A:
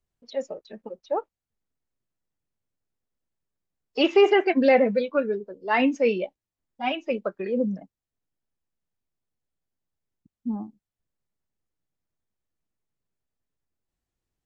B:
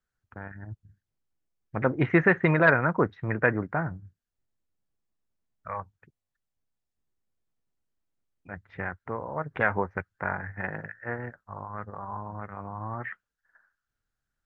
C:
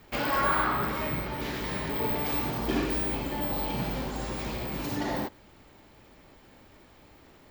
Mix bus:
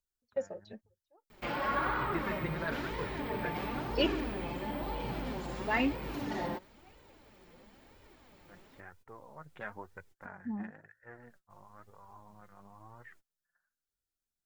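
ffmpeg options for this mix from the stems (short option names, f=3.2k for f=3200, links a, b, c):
-filter_complex "[0:a]acompressor=mode=upward:threshold=-40dB:ratio=2.5,volume=-3dB[a];[1:a]aexciter=amount=3.4:drive=7.5:freq=3.2k,volume=-14dB,asplit=2[b][c];[2:a]acrossover=split=3600[d][e];[e]acompressor=threshold=-47dB:ratio=4:attack=1:release=60[f];[d][f]amix=inputs=2:normalize=0,asoftclip=type=tanh:threshold=-18dB,adelay=1300,volume=-0.5dB[g];[c]apad=whole_len=637567[h];[a][h]sidechaingate=range=-32dB:threshold=-59dB:ratio=16:detection=peak[i];[i][b][g]amix=inputs=3:normalize=0,flanger=delay=2:depth=3.8:regen=39:speed=1:shape=sinusoidal"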